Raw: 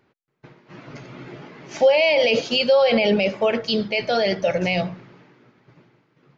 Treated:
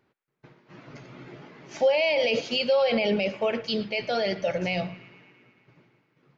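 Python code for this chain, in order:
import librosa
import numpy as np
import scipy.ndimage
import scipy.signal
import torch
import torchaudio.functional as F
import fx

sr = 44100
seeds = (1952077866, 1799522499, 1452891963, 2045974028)

y = fx.echo_banded(x, sr, ms=112, feedback_pct=74, hz=2100.0, wet_db=-17.5)
y = y * 10.0 ** (-6.0 / 20.0)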